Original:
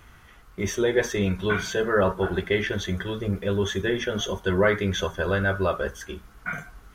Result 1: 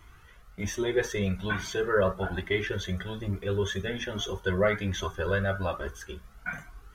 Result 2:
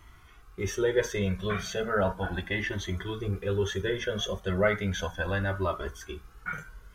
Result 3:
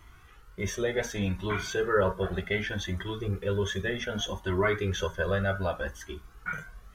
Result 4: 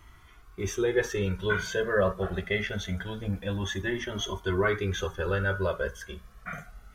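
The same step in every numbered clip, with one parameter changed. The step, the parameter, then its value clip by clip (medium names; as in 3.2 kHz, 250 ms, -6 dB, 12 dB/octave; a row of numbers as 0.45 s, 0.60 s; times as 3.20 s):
Shepard-style flanger, rate: 1.2 Hz, 0.35 Hz, 0.66 Hz, 0.24 Hz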